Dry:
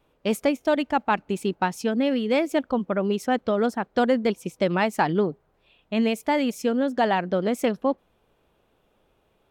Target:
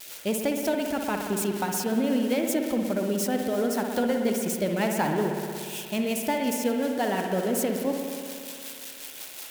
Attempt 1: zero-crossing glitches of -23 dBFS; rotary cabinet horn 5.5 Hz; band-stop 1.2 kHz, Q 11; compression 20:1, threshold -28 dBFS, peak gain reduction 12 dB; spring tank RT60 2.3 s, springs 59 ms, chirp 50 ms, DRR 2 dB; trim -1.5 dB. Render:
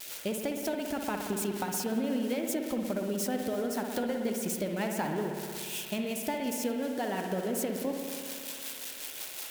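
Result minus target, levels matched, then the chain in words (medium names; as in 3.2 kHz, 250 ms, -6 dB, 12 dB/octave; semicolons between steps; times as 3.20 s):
compression: peak gain reduction +7.5 dB
zero-crossing glitches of -23 dBFS; rotary cabinet horn 5.5 Hz; band-stop 1.2 kHz, Q 11; compression 20:1, threshold -20 dBFS, peak gain reduction 4.5 dB; spring tank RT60 2.3 s, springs 59 ms, chirp 50 ms, DRR 2 dB; trim -1.5 dB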